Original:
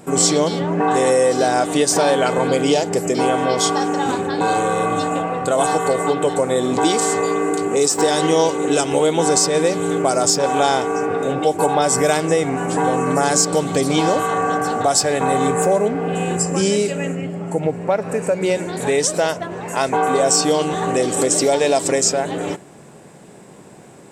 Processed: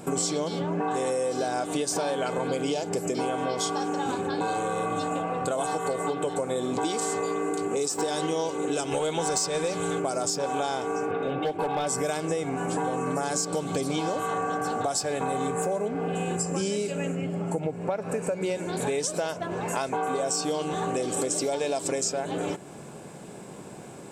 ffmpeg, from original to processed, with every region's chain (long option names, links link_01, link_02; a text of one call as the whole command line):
ffmpeg -i in.wav -filter_complex "[0:a]asettb=1/sr,asplit=3[link_01][link_02][link_03];[link_01]atrim=end=8.924[link_04];[link_02]atrim=start=8.92:end=10,asetpts=PTS-STARTPTS,afade=type=in:duration=0.004:curve=qsin,afade=type=out:start_time=1.076:duration=0.004:curve=qsin,lowpass=11000,acontrast=33,equalizer=frequency=290:width=0.86:gain=-7[link_05];[link_03]atrim=start=9.996[link_06];[link_04][link_05]acrossfade=duration=0.004:curve1=hsin:curve2=qsin[link_07];[link_07][link_06]acrossfade=duration=0.004:curve1=qsin:curve2=hsin,asettb=1/sr,asplit=3[link_08][link_09][link_10];[link_08]atrim=end=11.114[link_11];[link_09]atrim=start=11.11:end=11.87,asetpts=PTS-STARTPTS,afade=type=in:duration=0.004:curve=qsin,afade=type=out:start_time=0.756:duration=0.004:curve=qsin,highshelf=frequency=4800:width_type=q:width=1.5:gain=-14,asoftclip=type=hard:threshold=-11.5dB[link_12];[link_10]atrim=start=11.866[link_13];[link_11][link_12]acrossfade=duration=0.004:curve1=hsin:curve2=qsin[link_14];[link_14][link_13]acrossfade=duration=0.004:curve1=qsin:curve2=hsin,bandreject=frequency=1900:width=9.6,acompressor=threshold=-27dB:ratio=4" out.wav